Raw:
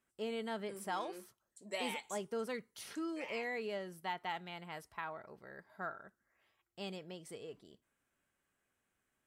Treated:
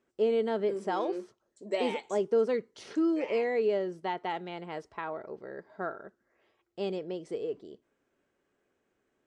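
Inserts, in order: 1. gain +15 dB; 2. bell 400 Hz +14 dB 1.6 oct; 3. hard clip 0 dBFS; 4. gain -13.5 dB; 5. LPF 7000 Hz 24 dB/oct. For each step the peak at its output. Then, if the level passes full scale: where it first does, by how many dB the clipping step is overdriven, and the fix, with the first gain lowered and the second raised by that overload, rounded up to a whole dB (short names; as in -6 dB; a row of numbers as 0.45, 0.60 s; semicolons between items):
-10.5, -4.0, -4.0, -17.5, -17.5 dBFS; no overload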